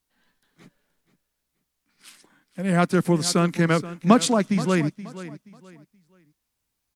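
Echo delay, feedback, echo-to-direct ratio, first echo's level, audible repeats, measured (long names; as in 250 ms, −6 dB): 476 ms, 28%, −15.0 dB, −15.5 dB, 2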